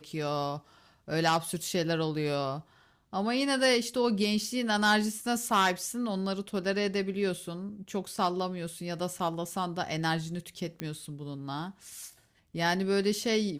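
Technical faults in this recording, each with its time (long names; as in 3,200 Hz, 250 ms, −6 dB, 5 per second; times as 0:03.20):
0:10.80: click −19 dBFS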